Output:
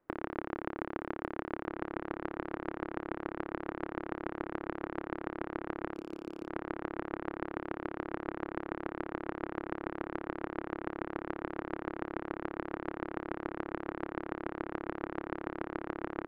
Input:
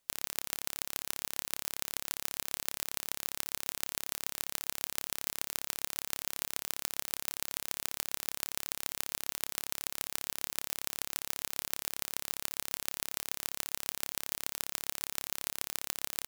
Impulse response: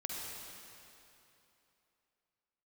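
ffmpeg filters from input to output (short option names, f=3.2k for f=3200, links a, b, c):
-filter_complex "[0:a]lowpass=f=1.6k:w=0.5412,lowpass=f=1.6k:w=1.3066,equalizer=f=330:t=o:w=0.75:g=13.5,asettb=1/sr,asplit=3[a][b][c];[a]atrim=end=5.944[d];[b]atrim=start=5.94:end=6.48,asetpts=PTS-STARTPTS,afade=t=in:d=0.004:c=qsin,afade=t=out:st=0.536:d=0.004:c=qsin,aeval=exprs='clip(val(0),-1,0.0119)':c=same[e];[c]atrim=start=6.476[f];[d][e]acrossfade=d=0.004:c1=hsin:c2=qsin[g];[g][f]acrossfade=d=0.004:c1=qsin:c2=hsin,asplit=2[h][i];[i]adelay=1574,volume=-15dB,highshelf=f=4k:g=-35.4[j];[h][j]amix=inputs=2:normalize=0,volume=6.5dB"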